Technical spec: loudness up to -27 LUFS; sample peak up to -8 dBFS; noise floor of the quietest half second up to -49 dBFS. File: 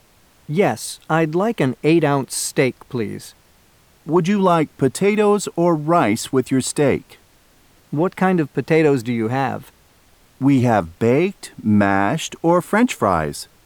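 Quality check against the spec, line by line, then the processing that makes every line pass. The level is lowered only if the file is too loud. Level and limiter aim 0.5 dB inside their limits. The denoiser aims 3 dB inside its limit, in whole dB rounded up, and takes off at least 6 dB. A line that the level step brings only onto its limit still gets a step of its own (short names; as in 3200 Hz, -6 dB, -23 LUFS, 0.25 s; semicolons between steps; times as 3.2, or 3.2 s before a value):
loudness -18.5 LUFS: fail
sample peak -2.0 dBFS: fail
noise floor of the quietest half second -54 dBFS: OK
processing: gain -9 dB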